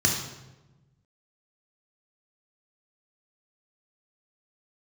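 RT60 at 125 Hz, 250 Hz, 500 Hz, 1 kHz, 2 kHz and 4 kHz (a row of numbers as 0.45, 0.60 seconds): 1.7, 1.5, 1.2, 0.95, 0.85, 0.75 seconds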